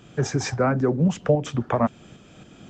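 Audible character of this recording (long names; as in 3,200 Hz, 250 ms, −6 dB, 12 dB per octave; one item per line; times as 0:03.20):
tremolo saw up 3.7 Hz, depth 40%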